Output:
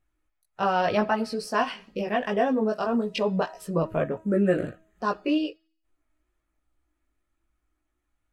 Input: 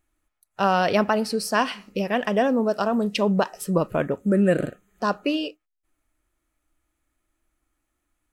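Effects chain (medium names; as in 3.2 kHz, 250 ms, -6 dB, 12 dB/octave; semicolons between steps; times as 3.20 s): low-pass 3.9 kHz 6 dB/octave; de-hum 320.3 Hz, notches 16; chorus voices 4, 0.59 Hz, delay 18 ms, depth 1.6 ms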